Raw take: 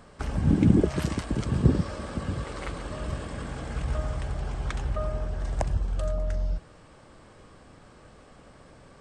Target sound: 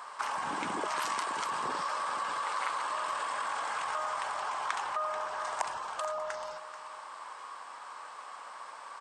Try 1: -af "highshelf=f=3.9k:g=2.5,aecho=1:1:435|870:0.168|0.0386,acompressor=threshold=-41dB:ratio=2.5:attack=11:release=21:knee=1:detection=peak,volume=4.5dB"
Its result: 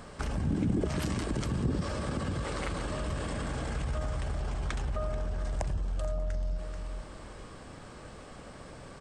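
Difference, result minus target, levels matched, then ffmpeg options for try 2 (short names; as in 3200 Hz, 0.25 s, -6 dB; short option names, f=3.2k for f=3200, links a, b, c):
1000 Hz band -12.0 dB
-af "highpass=f=1k:t=q:w=4.5,highshelf=f=3.9k:g=2.5,aecho=1:1:435|870:0.168|0.0386,acompressor=threshold=-41dB:ratio=2.5:attack=11:release=21:knee=1:detection=peak,volume=4.5dB"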